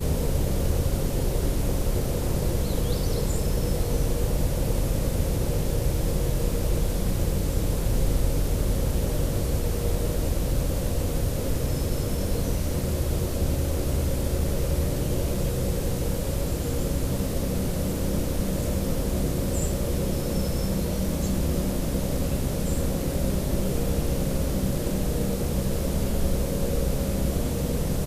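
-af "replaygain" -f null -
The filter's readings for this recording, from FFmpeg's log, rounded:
track_gain = +13.2 dB
track_peak = 0.201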